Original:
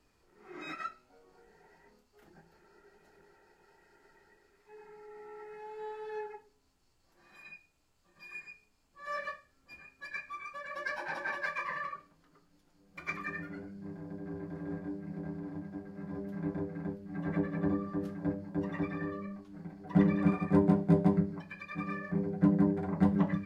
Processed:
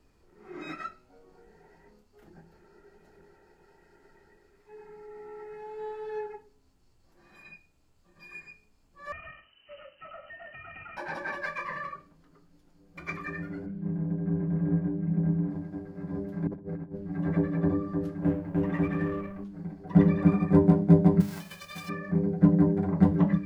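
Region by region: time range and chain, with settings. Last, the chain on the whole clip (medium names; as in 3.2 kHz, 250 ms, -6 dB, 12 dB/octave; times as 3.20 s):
9.12–10.97 s: square wave that keeps the level + compression, threshold -44 dBFS + frequency inversion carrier 3 kHz
13.66–15.50 s: low-pass 3.3 kHz 24 dB/octave + peaking EQ 170 Hz +9 dB 0.83 oct
16.47–17.12 s: compressor with a negative ratio -43 dBFS, ratio -0.5 + treble shelf 3.9 kHz -10 dB
18.22–19.44 s: companding laws mixed up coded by mu + resonant high shelf 3.3 kHz -7 dB, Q 1.5
21.20–21.88 s: formants flattened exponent 0.3 + band-stop 310 Hz, Q 6.1 + compression 12:1, threshold -38 dBFS
whole clip: bass shelf 460 Hz +9.5 dB; hum notches 50/100/150/200/250/300 Hz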